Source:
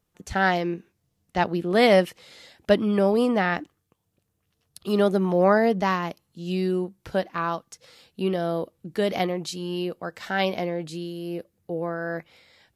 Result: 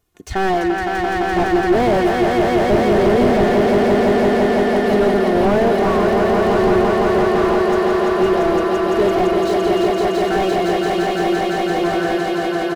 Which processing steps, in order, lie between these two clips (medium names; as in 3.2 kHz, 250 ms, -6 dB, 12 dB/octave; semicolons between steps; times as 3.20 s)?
comb 2.8 ms, depth 61%; echo with a slow build-up 170 ms, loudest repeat 5, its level -5.5 dB; slew-rate limiter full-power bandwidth 71 Hz; trim +5.5 dB